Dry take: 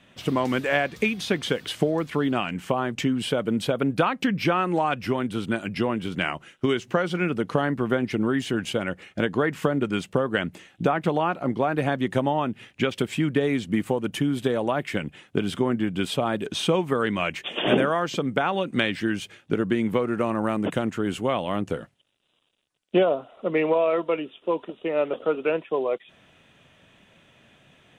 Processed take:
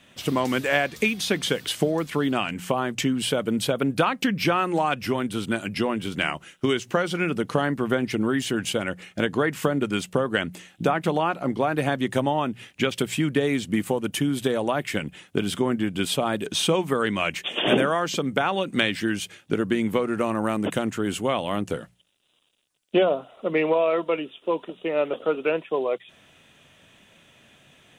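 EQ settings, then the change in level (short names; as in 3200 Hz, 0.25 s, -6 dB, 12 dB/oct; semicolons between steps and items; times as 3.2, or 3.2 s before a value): high shelf 4600 Hz +10 dB; notches 60/120/180 Hz; 0.0 dB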